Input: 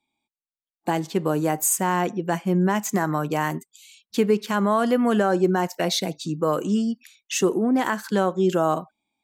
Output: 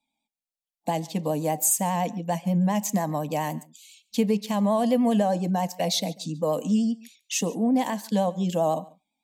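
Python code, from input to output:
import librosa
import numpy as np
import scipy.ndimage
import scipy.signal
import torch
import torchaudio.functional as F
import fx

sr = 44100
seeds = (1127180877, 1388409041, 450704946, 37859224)

y = fx.vibrato(x, sr, rate_hz=10.0, depth_cents=48.0)
y = fx.fixed_phaser(y, sr, hz=370.0, stages=6)
y = y + 10.0 ** (-23.0 / 20.0) * np.pad(y, (int(141 * sr / 1000.0), 0))[:len(y)]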